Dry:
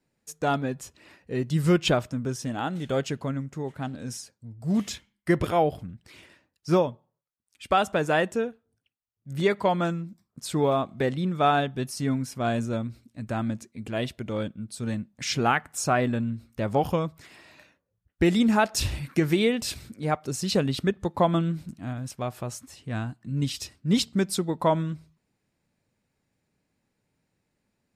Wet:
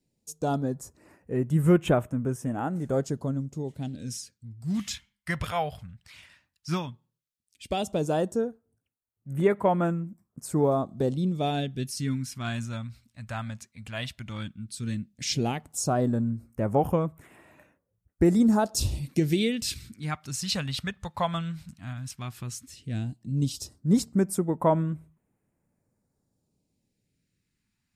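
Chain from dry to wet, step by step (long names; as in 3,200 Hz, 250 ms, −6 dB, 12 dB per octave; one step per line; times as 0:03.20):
all-pass phaser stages 2, 0.13 Hz, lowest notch 330–4,300 Hz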